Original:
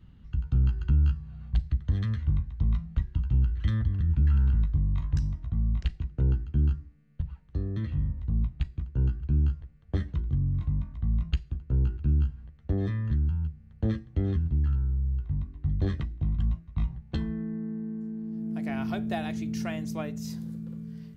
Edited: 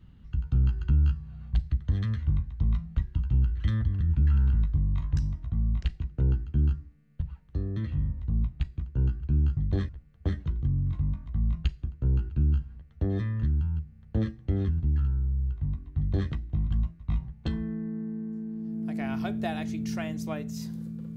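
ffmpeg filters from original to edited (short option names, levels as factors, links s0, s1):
-filter_complex "[0:a]asplit=3[s0][s1][s2];[s0]atrim=end=9.572[s3];[s1]atrim=start=15.658:end=15.982[s4];[s2]atrim=start=9.568[s5];[s3][s4]acrossfade=d=0.004:c1=hsin:c2=hsin[s6];[s6][s5]acrossfade=d=0.004:c1=hsin:c2=hsin"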